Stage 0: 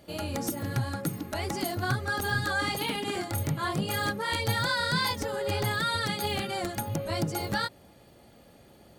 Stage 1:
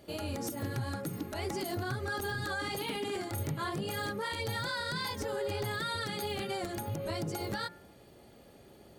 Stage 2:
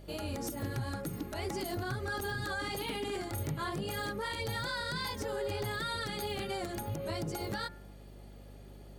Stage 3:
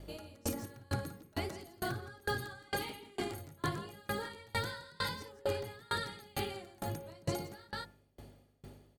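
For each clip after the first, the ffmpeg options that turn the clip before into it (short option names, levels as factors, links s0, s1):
-af "equalizer=f=390:t=o:w=0.4:g=6,bandreject=f=175.1:t=h:w=4,bandreject=f=350.2:t=h:w=4,bandreject=f=525.3:t=h:w=4,bandreject=f=700.4:t=h:w=4,bandreject=f=875.5:t=h:w=4,bandreject=f=1050.6:t=h:w=4,bandreject=f=1225.7:t=h:w=4,bandreject=f=1400.8:t=h:w=4,bandreject=f=1575.9:t=h:w=4,bandreject=f=1751:t=h:w=4,bandreject=f=1926.1:t=h:w=4,bandreject=f=2101.2:t=h:w=4,bandreject=f=2276.3:t=h:w=4,alimiter=level_in=1.06:limit=0.0631:level=0:latency=1:release=106,volume=0.944,volume=0.794"
-af "aeval=exprs='val(0)+0.00355*(sin(2*PI*50*n/s)+sin(2*PI*2*50*n/s)/2+sin(2*PI*3*50*n/s)/3+sin(2*PI*4*50*n/s)/4+sin(2*PI*5*50*n/s)/5)':c=same,volume=0.891"
-filter_complex "[0:a]asplit=2[s0][s1];[s1]aecho=0:1:56|168:0.282|0.708[s2];[s0][s2]amix=inputs=2:normalize=0,aeval=exprs='val(0)*pow(10,-31*if(lt(mod(2.2*n/s,1),2*abs(2.2)/1000),1-mod(2.2*n/s,1)/(2*abs(2.2)/1000),(mod(2.2*n/s,1)-2*abs(2.2)/1000)/(1-2*abs(2.2)/1000))/20)':c=same,volume=1.41"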